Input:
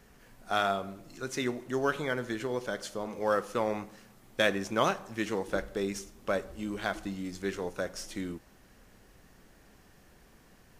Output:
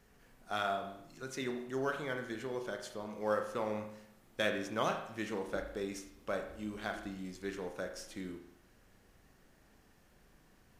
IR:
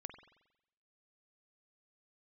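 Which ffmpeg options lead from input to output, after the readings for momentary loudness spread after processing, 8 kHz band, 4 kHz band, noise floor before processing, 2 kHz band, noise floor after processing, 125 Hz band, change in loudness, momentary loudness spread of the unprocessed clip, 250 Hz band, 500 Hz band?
10 LU, -7.0 dB, -6.5 dB, -59 dBFS, -6.0 dB, -66 dBFS, -6.5 dB, -6.0 dB, 10 LU, -6.0 dB, -5.5 dB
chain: -filter_complex "[1:a]atrim=start_sample=2205,asetrate=52920,aresample=44100[s0];[0:a][s0]afir=irnorm=-1:irlink=0"

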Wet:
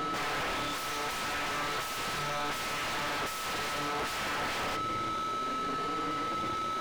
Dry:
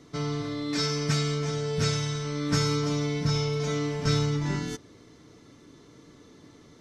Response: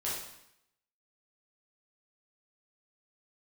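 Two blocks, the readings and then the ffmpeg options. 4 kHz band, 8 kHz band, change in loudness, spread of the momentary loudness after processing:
-2.5 dB, -3.5 dB, -4.5 dB, 1 LU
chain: -filter_complex "[0:a]afftfilt=real='re*pow(10,24/40*sin(2*PI*(1.5*log(max(b,1)*sr/1024/100)/log(2)-(0.68)*(pts-256)/sr)))':imag='im*pow(10,24/40*sin(2*PI*(1.5*log(max(b,1)*sr/1024/100)/log(2)-(0.68)*(pts-256)/sr)))':win_size=1024:overlap=0.75,lowpass=4500,acontrast=42,bandreject=f=1000:w=6.3,aeval=exprs='(mod(10.6*val(0)+1,2)-1)/10.6':c=same,alimiter=level_in=1.88:limit=0.0631:level=0:latency=1:release=12,volume=0.531,aeval=exprs='0.0335*(cos(1*acos(clip(val(0)/0.0335,-1,1)))-cos(1*PI/2))+0.00531*(cos(6*acos(clip(val(0)/0.0335,-1,1)))-cos(6*PI/2))':c=same,highshelf=f=3300:g=-5.5,aeval=exprs='val(0)+0.00891*sin(2*PI*1300*n/s)':c=same,asplit=2[s0][s1];[s1]highpass=f=720:p=1,volume=31.6,asoftclip=type=tanh:threshold=0.0447[s2];[s0][s2]amix=inputs=2:normalize=0,lowpass=f=2600:p=1,volume=0.501"

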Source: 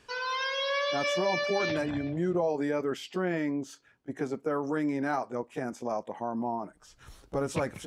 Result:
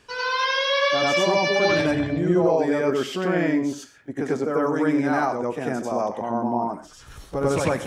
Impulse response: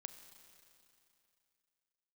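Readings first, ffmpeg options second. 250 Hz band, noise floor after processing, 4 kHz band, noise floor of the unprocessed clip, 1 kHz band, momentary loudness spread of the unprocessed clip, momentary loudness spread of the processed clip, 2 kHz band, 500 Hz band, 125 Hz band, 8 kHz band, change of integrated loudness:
+8.5 dB, -48 dBFS, +8.5 dB, -62 dBFS, +8.5 dB, 9 LU, 8 LU, +8.5 dB, +8.5 dB, +8.5 dB, +8.5 dB, +8.5 dB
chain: -filter_complex "[0:a]asplit=2[s0][s1];[1:a]atrim=start_sample=2205,atrim=end_sample=6174,adelay=94[s2];[s1][s2]afir=irnorm=-1:irlink=0,volume=2.82[s3];[s0][s3]amix=inputs=2:normalize=0,volume=1.5"

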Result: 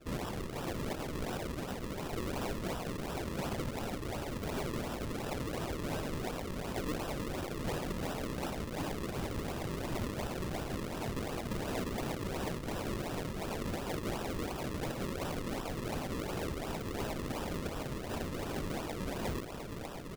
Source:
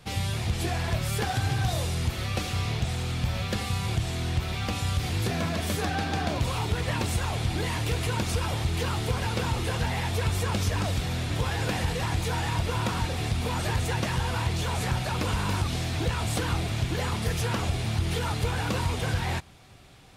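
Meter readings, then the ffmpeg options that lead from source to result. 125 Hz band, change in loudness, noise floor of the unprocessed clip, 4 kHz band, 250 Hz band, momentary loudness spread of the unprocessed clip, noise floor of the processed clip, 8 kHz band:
-14.0 dB, -10.0 dB, -33 dBFS, -12.5 dB, -4.5 dB, 2 LU, -42 dBFS, -11.0 dB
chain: -af "areverse,acompressor=mode=upward:threshold=0.0224:ratio=2.5,areverse,alimiter=limit=0.0708:level=0:latency=1,highpass=f=2000:t=q:w=3.5,highshelf=f=6000:g=-9.5,aecho=1:1:1146|2292|3438|4584|5730|6876:0.398|0.215|0.116|0.0627|0.0339|0.0183,acrusher=samples=40:mix=1:aa=0.000001:lfo=1:lforange=40:lforate=2.8,asoftclip=type=hard:threshold=0.0335,volume=0.841"

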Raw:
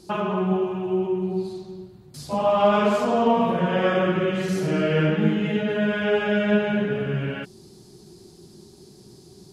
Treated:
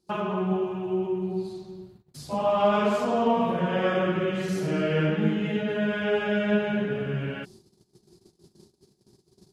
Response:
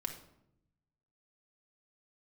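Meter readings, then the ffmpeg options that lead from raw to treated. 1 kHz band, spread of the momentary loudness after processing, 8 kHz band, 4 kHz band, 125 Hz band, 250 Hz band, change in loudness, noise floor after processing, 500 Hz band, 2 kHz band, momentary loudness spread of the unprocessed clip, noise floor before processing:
-3.5 dB, 11 LU, -4.0 dB, -3.5 dB, -3.5 dB, -3.5 dB, -3.5 dB, -68 dBFS, -3.5 dB, -3.5 dB, 13 LU, -50 dBFS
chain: -af "agate=range=0.1:threshold=0.00562:ratio=16:detection=peak,volume=0.668"

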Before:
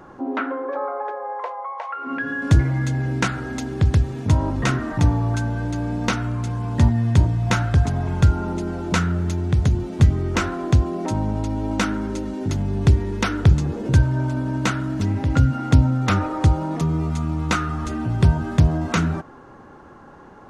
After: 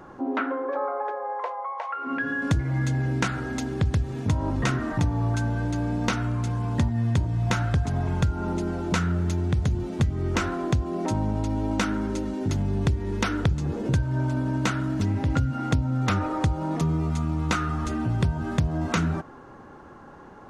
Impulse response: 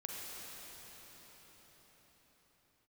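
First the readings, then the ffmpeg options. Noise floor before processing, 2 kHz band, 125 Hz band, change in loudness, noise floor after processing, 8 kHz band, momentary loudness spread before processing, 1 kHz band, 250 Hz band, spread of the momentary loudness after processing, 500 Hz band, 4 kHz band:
-44 dBFS, -3.5 dB, -5.5 dB, -5.0 dB, -46 dBFS, -3.5 dB, 9 LU, -3.0 dB, -3.5 dB, 4 LU, -2.5 dB, -3.5 dB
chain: -af "acompressor=threshold=0.126:ratio=6,volume=0.841"

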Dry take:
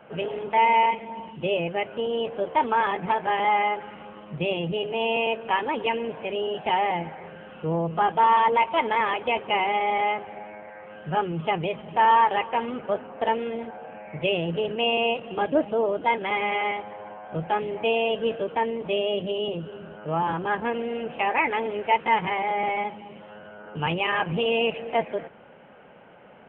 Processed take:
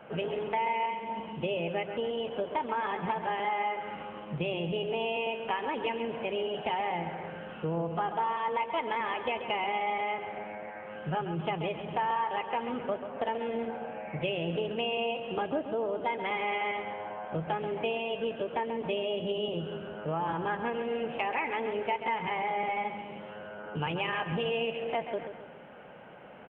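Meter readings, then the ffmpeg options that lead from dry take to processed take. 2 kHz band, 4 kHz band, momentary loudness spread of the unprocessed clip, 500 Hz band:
-7.5 dB, no reading, 16 LU, -6.0 dB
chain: -filter_complex "[0:a]acompressor=threshold=0.0316:ratio=4,asplit=2[s0][s1];[s1]aecho=0:1:135|270|405|540|675:0.335|0.154|0.0709|0.0326|0.015[s2];[s0][s2]amix=inputs=2:normalize=0"

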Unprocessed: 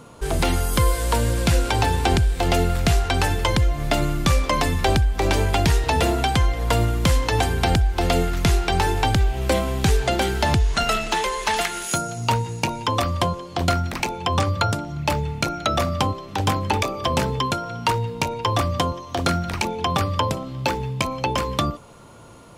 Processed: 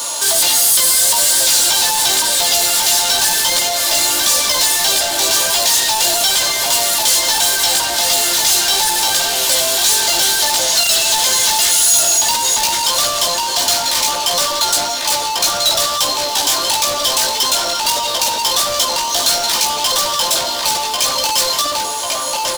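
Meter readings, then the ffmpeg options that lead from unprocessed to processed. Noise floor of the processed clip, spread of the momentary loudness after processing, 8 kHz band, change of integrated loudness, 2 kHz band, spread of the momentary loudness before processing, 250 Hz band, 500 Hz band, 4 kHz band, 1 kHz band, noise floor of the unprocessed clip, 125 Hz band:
-20 dBFS, 5 LU, +21.0 dB, +9.5 dB, +6.0 dB, 5 LU, -8.5 dB, +1.0 dB, +15.5 dB, +4.0 dB, -38 dBFS, -19.5 dB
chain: -filter_complex "[0:a]highpass=670,highshelf=f=4700:g=5,bandreject=f=1300:w=6.3,aecho=1:1:3.3:0.71,asplit=2[s0][s1];[s1]adelay=1094,lowpass=f=1700:p=1,volume=0.422,asplit=2[s2][s3];[s3]adelay=1094,lowpass=f=1700:p=1,volume=0.46,asplit=2[s4][s5];[s5]adelay=1094,lowpass=f=1700:p=1,volume=0.46,asplit=2[s6][s7];[s7]adelay=1094,lowpass=f=1700:p=1,volume=0.46,asplit=2[s8][s9];[s9]adelay=1094,lowpass=f=1700:p=1,volume=0.46[s10];[s2][s4][s6][s8][s10]amix=inputs=5:normalize=0[s11];[s0][s11]amix=inputs=2:normalize=0,flanger=delay=15.5:depth=2.6:speed=1.6,asplit=2[s12][s13];[s13]highpass=f=720:p=1,volume=79.4,asoftclip=type=tanh:threshold=0.447[s14];[s12][s14]amix=inputs=2:normalize=0,lowpass=f=2200:p=1,volume=0.501,aexciter=amount=6:drive=7.5:freq=3400,acrusher=bits=3:mix=0:aa=0.5,volume=0.501"

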